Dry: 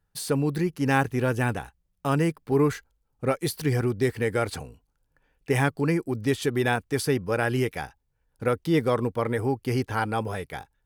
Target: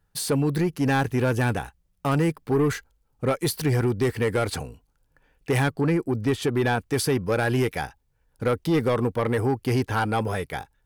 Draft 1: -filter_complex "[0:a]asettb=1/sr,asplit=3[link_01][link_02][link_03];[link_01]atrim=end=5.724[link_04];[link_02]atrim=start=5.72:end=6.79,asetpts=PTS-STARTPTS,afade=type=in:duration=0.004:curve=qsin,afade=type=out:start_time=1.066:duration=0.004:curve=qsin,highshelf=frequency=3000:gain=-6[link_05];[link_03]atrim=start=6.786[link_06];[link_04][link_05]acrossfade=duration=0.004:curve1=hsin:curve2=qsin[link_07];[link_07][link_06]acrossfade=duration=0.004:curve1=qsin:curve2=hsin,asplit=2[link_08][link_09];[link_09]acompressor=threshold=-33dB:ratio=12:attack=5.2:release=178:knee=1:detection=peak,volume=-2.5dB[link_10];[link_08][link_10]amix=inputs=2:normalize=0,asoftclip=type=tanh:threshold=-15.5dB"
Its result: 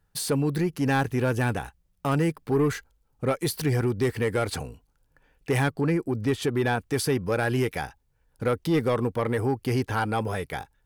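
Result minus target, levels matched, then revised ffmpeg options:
downward compressor: peak gain reduction +11 dB
-filter_complex "[0:a]asettb=1/sr,asplit=3[link_01][link_02][link_03];[link_01]atrim=end=5.724[link_04];[link_02]atrim=start=5.72:end=6.79,asetpts=PTS-STARTPTS,afade=type=in:duration=0.004:curve=qsin,afade=type=out:start_time=1.066:duration=0.004:curve=qsin,highshelf=frequency=3000:gain=-6[link_05];[link_03]atrim=start=6.786[link_06];[link_04][link_05]acrossfade=duration=0.004:curve1=hsin:curve2=qsin[link_07];[link_07][link_06]acrossfade=duration=0.004:curve1=qsin:curve2=hsin,asplit=2[link_08][link_09];[link_09]acompressor=threshold=-21dB:ratio=12:attack=5.2:release=178:knee=1:detection=peak,volume=-2.5dB[link_10];[link_08][link_10]amix=inputs=2:normalize=0,asoftclip=type=tanh:threshold=-15.5dB"

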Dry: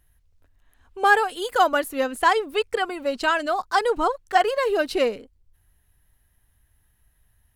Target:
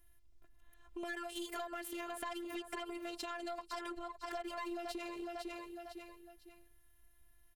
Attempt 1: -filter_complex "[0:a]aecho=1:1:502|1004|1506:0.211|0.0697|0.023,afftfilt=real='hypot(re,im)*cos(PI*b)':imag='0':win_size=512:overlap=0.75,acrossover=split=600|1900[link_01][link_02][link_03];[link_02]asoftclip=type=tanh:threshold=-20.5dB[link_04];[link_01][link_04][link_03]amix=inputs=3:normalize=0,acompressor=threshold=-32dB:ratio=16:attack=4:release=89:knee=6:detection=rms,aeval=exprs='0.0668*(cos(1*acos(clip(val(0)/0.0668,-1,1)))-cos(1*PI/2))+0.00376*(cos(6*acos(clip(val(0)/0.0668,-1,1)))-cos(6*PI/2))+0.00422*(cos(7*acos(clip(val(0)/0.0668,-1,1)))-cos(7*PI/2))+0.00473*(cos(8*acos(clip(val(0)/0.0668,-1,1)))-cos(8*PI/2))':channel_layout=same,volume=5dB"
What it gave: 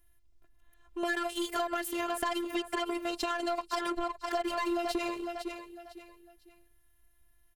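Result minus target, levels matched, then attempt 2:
downward compressor: peak gain reduction −7.5 dB
-filter_complex "[0:a]aecho=1:1:502|1004|1506:0.211|0.0697|0.023,afftfilt=real='hypot(re,im)*cos(PI*b)':imag='0':win_size=512:overlap=0.75,acrossover=split=600|1900[link_01][link_02][link_03];[link_02]asoftclip=type=tanh:threshold=-20.5dB[link_04];[link_01][link_04][link_03]amix=inputs=3:normalize=0,acompressor=threshold=-40dB:ratio=16:attack=4:release=89:knee=6:detection=rms,aeval=exprs='0.0668*(cos(1*acos(clip(val(0)/0.0668,-1,1)))-cos(1*PI/2))+0.00376*(cos(6*acos(clip(val(0)/0.0668,-1,1)))-cos(6*PI/2))+0.00422*(cos(7*acos(clip(val(0)/0.0668,-1,1)))-cos(7*PI/2))+0.00473*(cos(8*acos(clip(val(0)/0.0668,-1,1)))-cos(8*PI/2))':channel_layout=same,volume=5dB"

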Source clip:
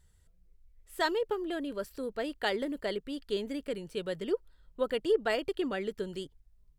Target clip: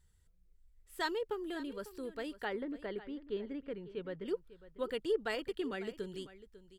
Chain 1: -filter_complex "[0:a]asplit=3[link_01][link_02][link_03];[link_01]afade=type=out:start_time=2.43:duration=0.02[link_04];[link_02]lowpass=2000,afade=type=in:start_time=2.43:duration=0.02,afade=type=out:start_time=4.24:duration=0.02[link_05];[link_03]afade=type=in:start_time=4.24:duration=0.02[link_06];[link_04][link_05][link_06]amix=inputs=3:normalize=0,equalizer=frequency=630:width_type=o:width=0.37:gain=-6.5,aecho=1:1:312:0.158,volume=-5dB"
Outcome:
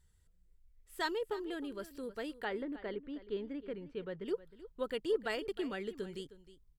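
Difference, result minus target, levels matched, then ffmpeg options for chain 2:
echo 236 ms early
-filter_complex "[0:a]asplit=3[link_01][link_02][link_03];[link_01]afade=type=out:start_time=2.43:duration=0.02[link_04];[link_02]lowpass=2000,afade=type=in:start_time=2.43:duration=0.02,afade=type=out:start_time=4.24:duration=0.02[link_05];[link_03]afade=type=in:start_time=4.24:duration=0.02[link_06];[link_04][link_05][link_06]amix=inputs=3:normalize=0,equalizer=frequency=630:width_type=o:width=0.37:gain=-6.5,aecho=1:1:548:0.158,volume=-5dB"

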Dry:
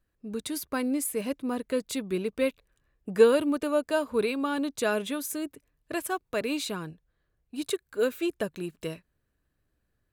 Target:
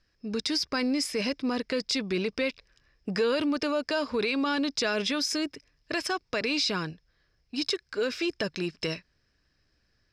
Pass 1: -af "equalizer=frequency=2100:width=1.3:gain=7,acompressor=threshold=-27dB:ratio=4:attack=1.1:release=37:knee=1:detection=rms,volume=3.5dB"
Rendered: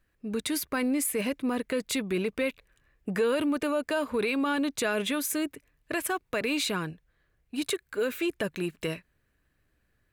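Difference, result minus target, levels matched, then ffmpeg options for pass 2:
4,000 Hz band −5.0 dB
-af "lowpass=frequency=5200:width_type=q:width=15,equalizer=frequency=2100:width=1.3:gain=7,acompressor=threshold=-27dB:ratio=4:attack=1.1:release=37:knee=1:detection=rms,volume=3.5dB"

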